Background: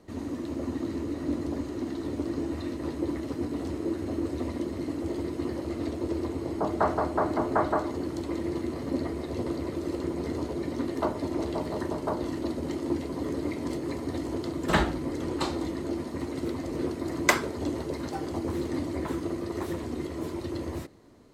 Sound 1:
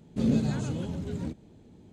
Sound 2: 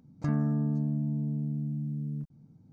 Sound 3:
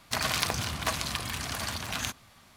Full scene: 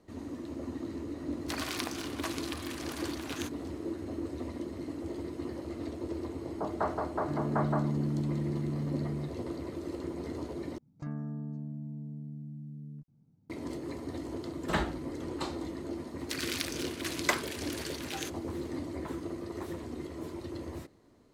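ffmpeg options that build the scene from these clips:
-filter_complex "[3:a]asplit=2[s0][s1];[2:a]asplit=2[s2][s3];[0:a]volume=0.473[s4];[s0]bass=f=250:g=-13,treble=f=4000:g=-1[s5];[s2]dynaudnorm=f=340:g=3:m=2.99[s6];[s1]highpass=f=1500:w=0.5412,highpass=f=1500:w=1.3066[s7];[s4]asplit=2[s8][s9];[s8]atrim=end=10.784[s10];[s3]atrim=end=2.72,asetpts=PTS-STARTPTS,volume=0.316[s11];[s9]atrim=start=13.496[s12];[s5]atrim=end=2.56,asetpts=PTS-STARTPTS,volume=0.398,afade=t=in:d=0.004:c=hsin,afade=t=out:st=2.556:d=0.004:c=hsin,adelay=1370[s13];[s6]atrim=end=2.72,asetpts=PTS-STARTPTS,volume=0.282,afade=t=in:d=0.004:c=hsin,afade=t=out:st=2.716:d=0.004:c=hsin,adelay=7040[s14];[s7]atrim=end=2.56,asetpts=PTS-STARTPTS,volume=0.501,afade=t=in:d=0.004:c=hsin,afade=t=out:st=2.556:d=0.004:c=hsin,adelay=16180[s15];[s10][s11]acrossfade=d=0.004:c1=hsin:c2=hsin[s16];[s16][s12]acrossfade=d=0.004:c1=hsin:c2=hsin[s17];[s17][s13][s14][s15]amix=inputs=4:normalize=0"

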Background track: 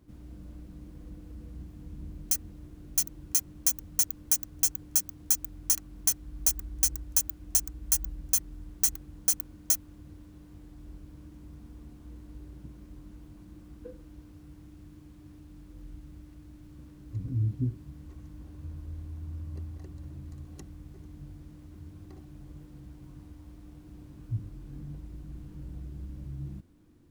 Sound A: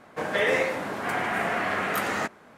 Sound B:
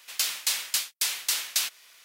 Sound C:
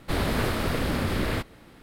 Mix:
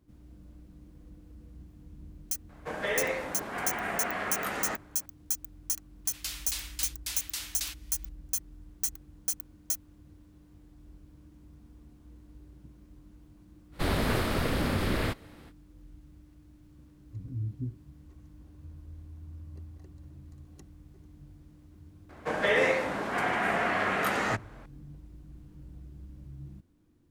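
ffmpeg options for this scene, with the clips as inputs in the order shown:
-filter_complex "[1:a]asplit=2[s0][s1];[0:a]volume=0.501[s2];[s1]highshelf=f=12000:g=-9.5[s3];[s0]atrim=end=2.57,asetpts=PTS-STARTPTS,volume=0.473,afade=t=in:d=0.004:c=hsin,afade=t=out:st=2.566:d=0.004:c=hsin,adelay=2490[s4];[2:a]atrim=end=2.04,asetpts=PTS-STARTPTS,volume=0.316,afade=t=in:d=0.004:c=hsin,afade=t=out:st=2.036:d=0.004:c=hsin,adelay=6050[s5];[3:a]atrim=end=1.82,asetpts=PTS-STARTPTS,volume=0.794,afade=t=in:d=0.05,afade=t=out:st=1.77:d=0.05,adelay=13710[s6];[s3]atrim=end=2.57,asetpts=PTS-STARTPTS,volume=0.891,afade=t=in:d=0.004:c=hsin,afade=t=out:st=2.566:d=0.004:c=hsin,adelay=22090[s7];[s2][s4][s5][s6][s7]amix=inputs=5:normalize=0"

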